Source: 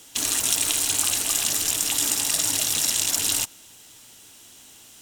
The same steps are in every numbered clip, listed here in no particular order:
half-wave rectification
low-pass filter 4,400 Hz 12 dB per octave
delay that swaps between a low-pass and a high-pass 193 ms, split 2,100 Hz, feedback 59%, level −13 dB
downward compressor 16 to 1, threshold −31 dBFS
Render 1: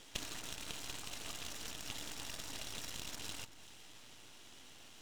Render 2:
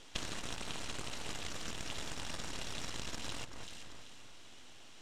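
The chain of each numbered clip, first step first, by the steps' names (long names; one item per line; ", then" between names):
downward compressor, then low-pass filter, then half-wave rectification, then delay that swaps between a low-pass and a high-pass
half-wave rectification, then delay that swaps between a low-pass and a high-pass, then downward compressor, then low-pass filter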